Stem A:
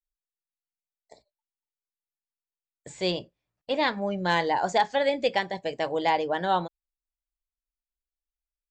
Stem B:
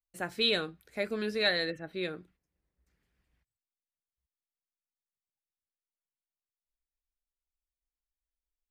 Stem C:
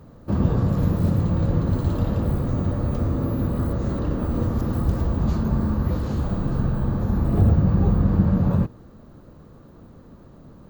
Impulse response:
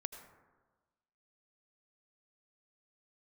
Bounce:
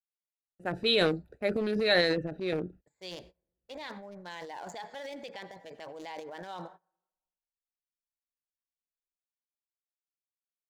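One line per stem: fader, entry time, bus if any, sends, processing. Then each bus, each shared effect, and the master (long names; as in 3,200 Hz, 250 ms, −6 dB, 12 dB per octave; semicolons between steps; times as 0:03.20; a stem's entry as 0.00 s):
−17.0 dB, 0.00 s, send −9.5 dB, adaptive Wiener filter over 15 samples; brickwall limiter −17.5 dBFS, peak gain reduction 5 dB; spectral tilt +2.5 dB per octave
+1.0 dB, 0.45 s, no send, adaptive Wiener filter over 41 samples; parametric band 550 Hz +4.5 dB 1.3 octaves
muted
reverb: on, RT60 1.3 s, pre-delay 73 ms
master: noise gate −59 dBFS, range −23 dB; transient designer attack −1 dB, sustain +11 dB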